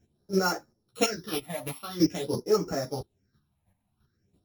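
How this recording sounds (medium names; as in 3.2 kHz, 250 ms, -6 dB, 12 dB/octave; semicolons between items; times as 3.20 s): a buzz of ramps at a fixed pitch in blocks of 8 samples; phasing stages 6, 0.47 Hz, lowest notch 370–3500 Hz; chopped level 3 Hz, depth 60%, duty 15%; a shimmering, thickened sound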